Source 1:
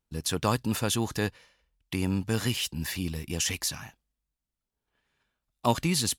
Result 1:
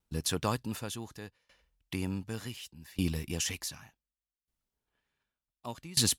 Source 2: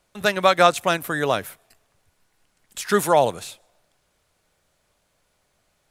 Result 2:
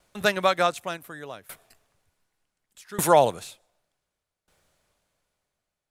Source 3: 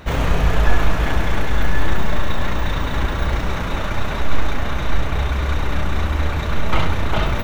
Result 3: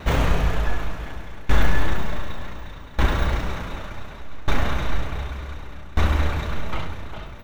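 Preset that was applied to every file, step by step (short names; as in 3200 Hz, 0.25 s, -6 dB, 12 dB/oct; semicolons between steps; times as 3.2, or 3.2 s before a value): dB-ramp tremolo decaying 0.67 Hz, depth 23 dB; gain +2.5 dB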